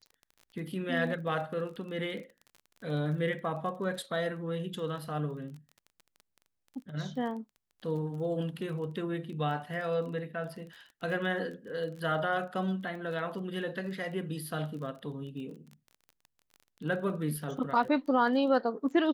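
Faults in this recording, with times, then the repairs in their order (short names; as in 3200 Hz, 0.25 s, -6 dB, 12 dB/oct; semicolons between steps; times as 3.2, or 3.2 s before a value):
crackle 22/s -41 dBFS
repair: de-click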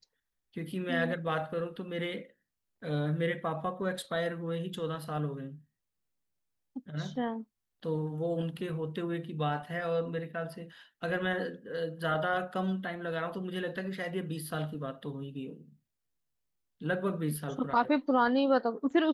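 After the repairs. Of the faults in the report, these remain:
none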